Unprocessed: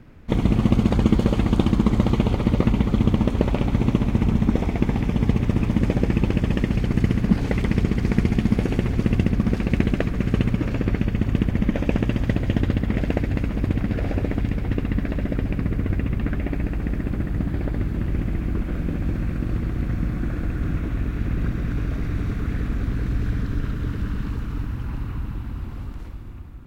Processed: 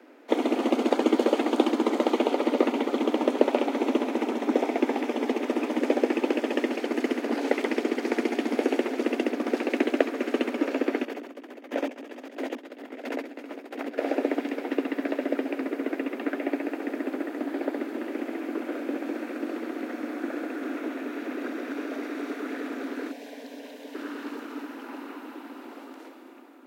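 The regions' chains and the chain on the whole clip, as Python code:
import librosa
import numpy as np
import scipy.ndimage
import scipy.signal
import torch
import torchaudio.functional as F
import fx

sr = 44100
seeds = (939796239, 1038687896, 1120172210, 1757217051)

y = fx.chain(x, sr, fx.over_compress(threshold_db=-25.0, ratio=-0.5),
    fx.chopper(hz=1.5, depth_pct=60, duty_pct=25), at=(11.05, 13.98))
y = fx.chain(y, sr, fx.peak_eq(hz=230.0, db=-6.5, octaves=1.0),
    fx.fixed_phaser(hz=350.0, stages=6), at=(23.11, 23.95))
y = scipy.signal.sosfilt(scipy.signal.butter(16, 250.0, 'highpass', fs=sr, output='sos'), y)
y = fx.peak_eq(y, sr, hz=610.0, db=5.5, octaves=1.4)
y = fx.notch(y, sr, hz=1100.0, q=13.0)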